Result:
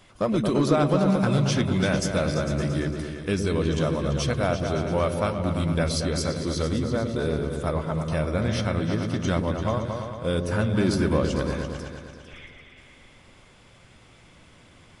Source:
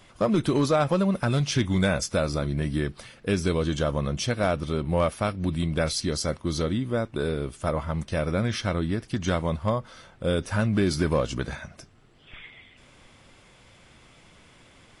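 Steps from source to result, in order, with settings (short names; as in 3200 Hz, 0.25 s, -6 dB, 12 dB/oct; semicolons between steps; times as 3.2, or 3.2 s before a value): repeats that get brighter 0.113 s, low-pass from 400 Hz, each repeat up 2 oct, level -3 dB; gain -1 dB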